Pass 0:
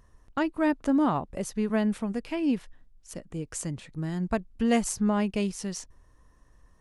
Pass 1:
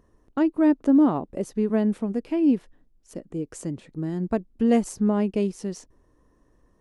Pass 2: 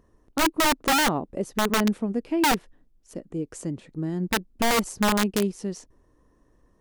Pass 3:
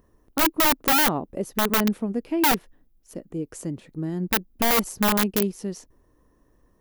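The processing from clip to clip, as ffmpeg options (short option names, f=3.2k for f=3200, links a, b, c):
-af "equalizer=f=340:w=0.64:g=13.5,volume=-6dB"
-af "aeval=exprs='(mod(6.31*val(0)+1,2)-1)/6.31':c=same"
-af "aexciter=amount=3:drive=5.8:freq=11k"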